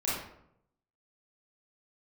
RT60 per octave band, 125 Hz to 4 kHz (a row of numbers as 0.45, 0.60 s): 1.0, 0.85, 0.80, 0.70, 0.60, 0.45 s